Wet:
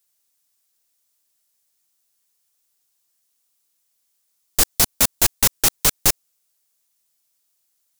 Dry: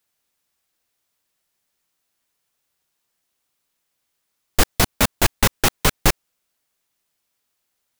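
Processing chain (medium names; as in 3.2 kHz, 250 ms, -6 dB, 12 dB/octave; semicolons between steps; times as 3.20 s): tone controls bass -2 dB, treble +12 dB; trim -5.5 dB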